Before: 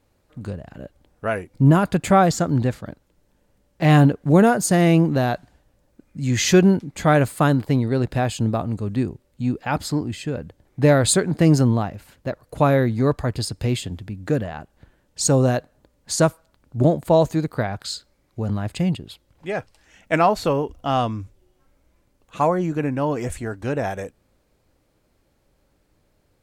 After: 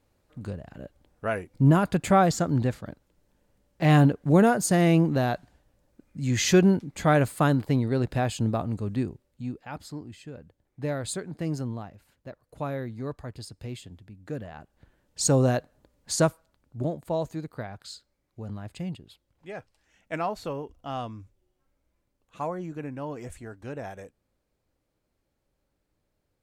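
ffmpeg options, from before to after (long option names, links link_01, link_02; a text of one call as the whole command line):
ffmpeg -i in.wav -af "volume=6.5dB,afade=type=out:start_time=8.88:duration=0.79:silence=0.298538,afade=type=in:start_time=14.25:duration=0.98:silence=0.281838,afade=type=out:start_time=16.14:duration=0.71:silence=0.375837" out.wav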